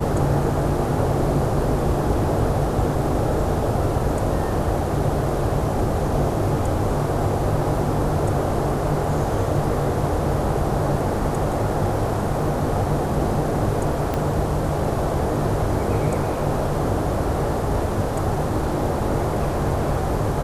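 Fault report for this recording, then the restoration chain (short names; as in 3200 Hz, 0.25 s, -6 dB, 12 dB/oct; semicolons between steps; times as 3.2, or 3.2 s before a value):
14.14 pop -11 dBFS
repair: de-click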